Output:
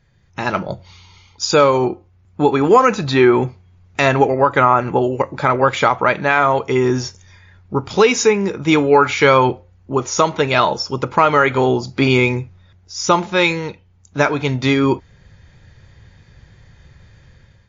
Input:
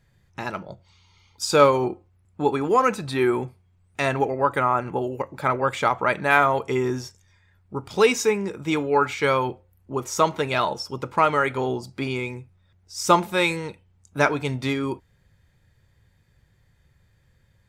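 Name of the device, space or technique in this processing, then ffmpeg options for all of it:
low-bitrate web radio: -af "dynaudnorm=f=210:g=5:m=11.5dB,alimiter=limit=-6dB:level=0:latency=1:release=150,volume=4.5dB" -ar 16000 -c:a libmp3lame -b:a 40k

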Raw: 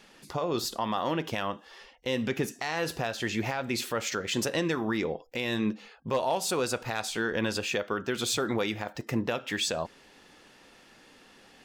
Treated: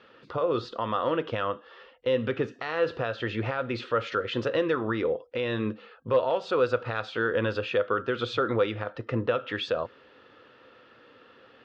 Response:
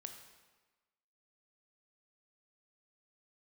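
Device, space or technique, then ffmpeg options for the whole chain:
guitar cabinet: -af "highpass=79,equalizer=f=110:t=q:w=4:g=7,equalizer=f=180:t=q:w=4:g=-10,equalizer=f=500:t=q:w=4:g=9,equalizer=f=790:t=q:w=4:g=-6,equalizer=f=1.3k:t=q:w=4:g=9,equalizer=f=2.2k:t=q:w=4:g=-5,lowpass=f=3.5k:w=0.5412,lowpass=f=3.5k:w=1.3066"

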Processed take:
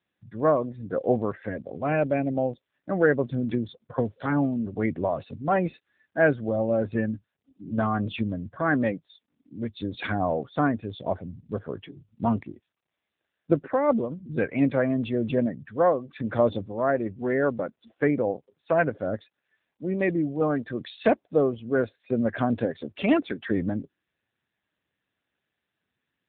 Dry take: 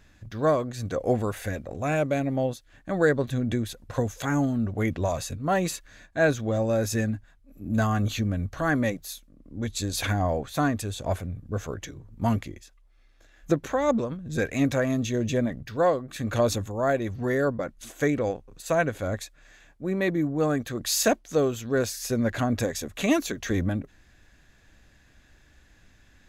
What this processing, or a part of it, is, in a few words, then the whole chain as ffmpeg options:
mobile call with aggressive noise cancelling: -af "highpass=140,afftdn=nr=21:nf=-37,volume=2dB" -ar 8000 -c:a libopencore_amrnb -b:a 7950

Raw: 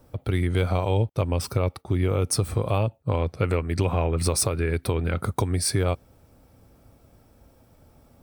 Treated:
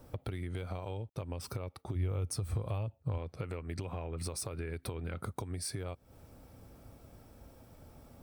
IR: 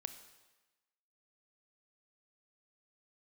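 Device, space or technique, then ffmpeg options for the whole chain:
serial compression, leveller first: -filter_complex "[0:a]acompressor=threshold=-31dB:ratio=1.5,acompressor=threshold=-36dB:ratio=6,asettb=1/sr,asplit=3[a][b][c];[a]atrim=end=1.954[d];[b]atrim=start=1.95:end=3.18,asetpts=PTS-STARTPTS,afade=t=in:d=0.004:c=qsin,afade=t=out:st=1.226:d=0.004:c=qsin,equalizer=f=81:w=1.4:g=9.5[e];[c]atrim=start=3.176[f];[d][e]acrossfade=d=0.004:c1=hsin:c2=qsin[g];[g][f]acrossfade=d=0.004:c1=qsin:c2=hsin"

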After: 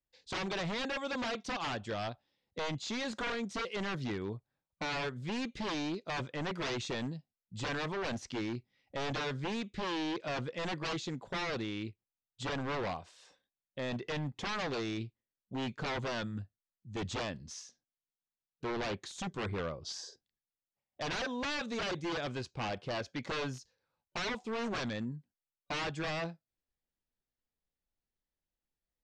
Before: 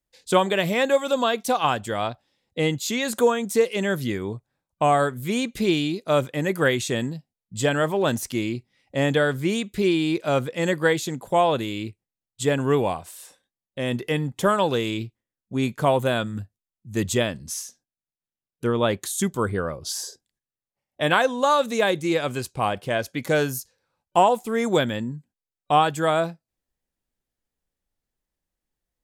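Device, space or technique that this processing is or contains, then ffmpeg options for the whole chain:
synthesiser wavefolder: -af "aeval=exprs='0.0794*(abs(mod(val(0)/0.0794+3,4)-2)-1)':c=same,lowpass=f=5.7k:w=0.5412,lowpass=f=5.7k:w=1.3066,volume=-8.5dB"

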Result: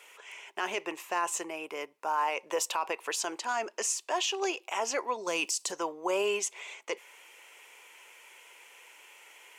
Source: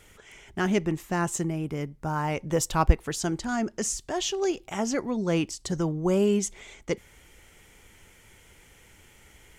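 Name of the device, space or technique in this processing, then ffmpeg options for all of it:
laptop speaker: -filter_complex "[0:a]asplit=3[a][b][c];[a]afade=t=out:st=5.26:d=0.02[d];[b]bass=f=250:g=13,treble=f=4k:g=13,afade=t=in:st=5.26:d=0.02,afade=t=out:st=5.7:d=0.02[e];[c]afade=t=in:st=5.7:d=0.02[f];[d][e][f]amix=inputs=3:normalize=0,highpass=f=450:w=0.5412,highpass=f=450:w=1.3066,equalizer=f=1k:t=o:w=0.26:g=10,equalizer=f=2.6k:t=o:w=0.31:g=10.5,alimiter=limit=-20.5dB:level=0:latency=1:release=25"

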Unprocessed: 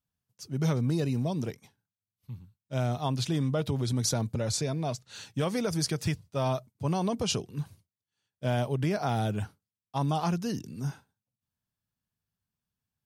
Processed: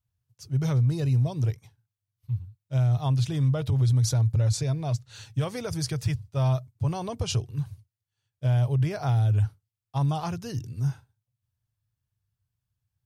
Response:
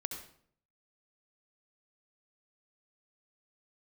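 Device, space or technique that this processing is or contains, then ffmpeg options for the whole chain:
car stereo with a boomy subwoofer: -af "lowshelf=f=150:t=q:w=3:g=9,alimiter=limit=-15.5dB:level=0:latency=1:release=27,volume=-1.5dB"

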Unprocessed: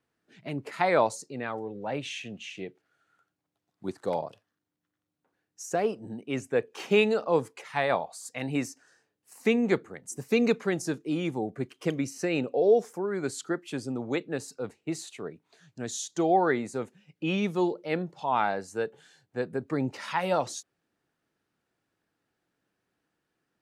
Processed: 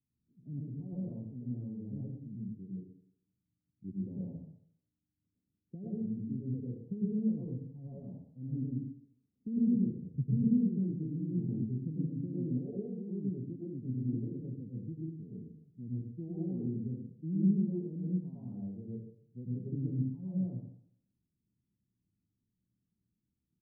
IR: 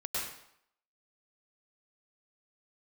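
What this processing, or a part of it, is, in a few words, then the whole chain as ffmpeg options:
club heard from the street: -filter_complex "[0:a]asplit=3[a][b][c];[a]afade=t=out:st=10.02:d=0.02[d];[b]aemphasis=mode=reproduction:type=riaa,afade=t=in:st=10.02:d=0.02,afade=t=out:st=10.43:d=0.02[e];[c]afade=t=in:st=10.43:d=0.02[f];[d][e][f]amix=inputs=3:normalize=0,alimiter=limit=-18.5dB:level=0:latency=1:release=16,lowpass=f=220:w=0.5412,lowpass=f=220:w=1.3066[g];[1:a]atrim=start_sample=2205[h];[g][h]afir=irnorm=-1:irlink=0,aecho=1:1:120:0.0944,volume=1dB"

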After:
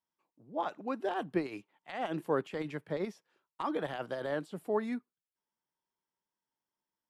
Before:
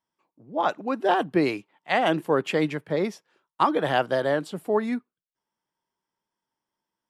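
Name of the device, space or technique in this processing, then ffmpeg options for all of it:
de-esser from a sidechain: -filter_complex "[0:a]asplit=2[a][b];[b]highpass=f=4.1k:w=0.5412,highpass=f=4.1k:w=1.3066,apad=whole_len=313073[c];[a][c]sidechaincompress=threshold=-49dB:ratio=12:attack=3.9:release=45,volume=-8dB"

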